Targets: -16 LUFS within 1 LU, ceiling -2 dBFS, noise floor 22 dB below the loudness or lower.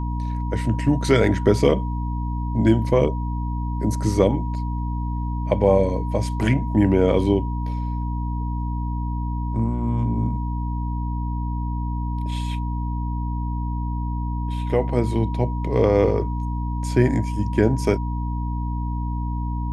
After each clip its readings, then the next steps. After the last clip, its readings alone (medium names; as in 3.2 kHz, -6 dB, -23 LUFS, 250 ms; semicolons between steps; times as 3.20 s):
hum 60 Hz; highest harmonic 300 Hz; hum level -23 dBFS; steady tone 960 Hz; tone level -34 dBFS; loudness -23.0 LUFS; peak level -3.0 dBFS; loudness target -16.0 LUFS
-> de-hum 60 Hz, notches 5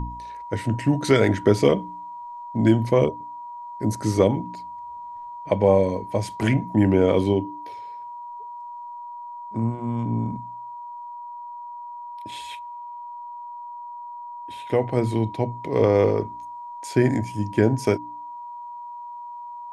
hum not found; steady tone 960 Hz; tone level -34 dBFS
-> band-stop 960 Hz, Q 30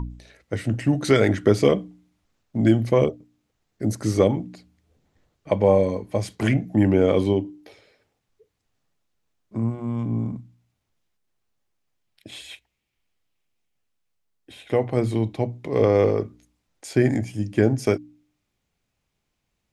steady tone not found; loudness -22.5 LUFS; peak level -5.0 dBFS; loudness target -16.0 LUFS
-> trim +6.5 dB; peak limiter -2 dBFS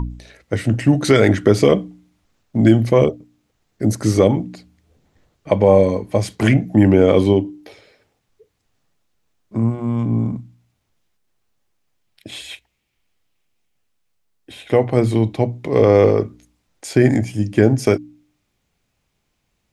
loudness -16.5 LUFS; peak level -2.0 dBFS; noise floor -71 dBFS